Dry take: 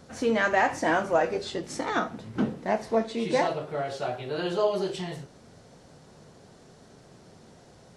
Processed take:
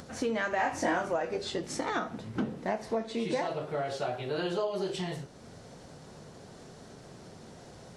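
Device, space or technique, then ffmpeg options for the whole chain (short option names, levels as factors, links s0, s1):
upward and downward compression: -filter_complex "[0:a]acompressor=mode=upward:threshold=0.00708:ratio=2.5,acompressor=threshold=0.0398:ratio=5,asettb=1/sr,asplit=3[s0][s1][s2];[s0]atrim=end=0.564[s3];[s1]atrim=start=0.56:end=1.08,asetpts=PTS-STARTPTS,afade=t=in:d=0.004:c=qsin,afade=t=out:st=0.516:d=0.004:c=qsin,asplit=2[s4][s5];[s5]adelay=22,volume=0.794[s6];[s4][s6]amix=inputs=2:normalize=0,atrim=end_sample=22932[s7];[s2]atrim=start=1.076[s8];[s3][s7]acrossfade=d=0.004:c1=hsin:c2=qsin[s9];[s9][s8]acrossfade=d=0.004:c1=qsin:c2=hsin"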